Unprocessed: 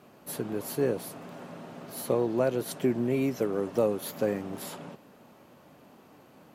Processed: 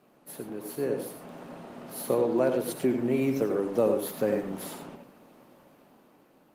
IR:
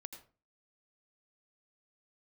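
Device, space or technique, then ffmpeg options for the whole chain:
far-field microphone of a smart speaker: -filter_complex "[0:a]asettb=1/sr,asplit=3[s0][s1][s2];[s0]atrim=end=3.414[s3];[s1]atrim=start=3.41:end=4.4,asetpts=PTS-STARTPTS,afade=t=in:d=0.004:c=qsin,afade=t=out:st=0.986:d=0.004:c=qsin,equalizer=f=89:t=o:w=0.99:g=4[s4];[s2]atrim=start=4.396[s5];[s3][s4]acrossfade=d=0.004:c1=hsin:c2=qsin[s6];[s6][s5]acrossfade=d=0.004:c1=qsin:c2=hsin[s7];[1:a]atrim=start_sample=2205[s8];[s7][s8]afir=irnorm=-1:irlink=0,highpass=150,dynaudnorm=f=300:g=7:m=2.11" -ar 48000 -c:a libopus -b:a 32k

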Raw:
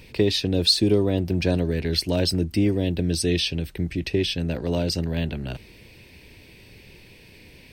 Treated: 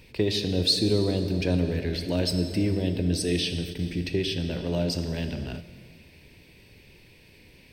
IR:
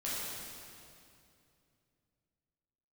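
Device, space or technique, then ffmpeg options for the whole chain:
keyed gated reverb: -filter_complex "[0:a]asettb=1/sr,asplit=3[s0][s1][s2];[s0]atrim=end=1.684[s3];[s1]atrim=start=1.68:end=2.26,asetpts=PTS-STARTPTS,afade=t=in:d=0.004:c=qsin,afade=t=out:st=0.576:d=0.004:c=qsin,acrossover=split=3300[s4][s5];[s5]acompressor=threshold=0.0224:ratio=4:attack=1:release=60[s6];[s4][s6]amix=inputs=2:normalize=0[s7];[s2]atrim=start=2.256[s8];[s3][s7]acrossfade=d=0.004:c1=hsin:c2=qsin[s9];[s9][s8]acrossfade=d=0.004:c1=qsin:c2=hsin,asplit=3[s10][s11][s12];[1:a]atrim=start_sample=2205[s13];[s11][s13]afir=irnorm=-1:irlink=0[s14];[s12]apad=whole_len=340485[s15];[s14][s15]sidechaingate=range=0.398:threshold=0.0158:ratio=16:detection=peak,volume=0.376[s16];[s10][s16]amix=inputs=2:normalize=0,volume=0.501"

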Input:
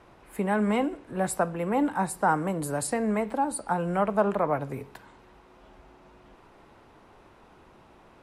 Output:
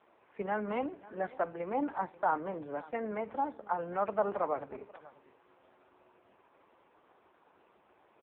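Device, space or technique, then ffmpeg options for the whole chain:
satellite phone: -af "highpass=320,lowpass=3300,aecho=1:1:538:0.1,volume=0.562" -ar 8000 -c:a libopencore_amrnb -b:a 4750

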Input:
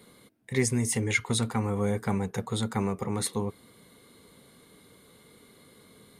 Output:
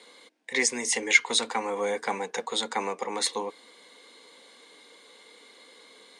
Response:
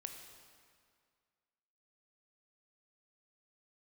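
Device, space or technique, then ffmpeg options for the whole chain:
phone speaker on a table: -af "highpass=f=380:w=0.5412,highpass=f=380:w=1.3066,equalizer=f=390:t=q:w=4:g=-10,equalizer=f=640:t=q:w=4:g=-7,equalizer=f=1300:t=q:w=4:g=-9,lowpass=f=7500:w=0.5412,lowpass=f=7500:w=1.3066,volume=2.66"

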